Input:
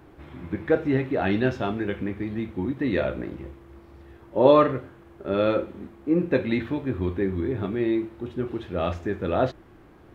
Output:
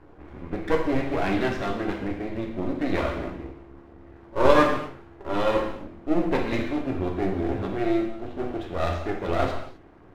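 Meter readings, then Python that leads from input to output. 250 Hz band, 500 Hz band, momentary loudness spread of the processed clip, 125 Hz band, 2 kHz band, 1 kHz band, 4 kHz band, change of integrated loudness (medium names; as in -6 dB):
-1.5 dB, -2.0 dB, 13 LU, -2.5 dB, +2.0 dB, +2.0 dB, +2.5 dB, -1.0 dB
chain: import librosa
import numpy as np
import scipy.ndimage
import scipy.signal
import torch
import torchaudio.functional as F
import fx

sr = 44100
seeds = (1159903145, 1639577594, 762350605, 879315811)

y = fx.env_lowpass(x, sr, base_hz=1500.0, full_db=-20.5)
y = np.maximum(y, 0.0)
y = fx.rev_gated(y, sr, seeds[0], gate_ms=290, shape='falling', drr_db=1.5)
y = F.gain(torch.from_numpy(y), 2.0).numpy()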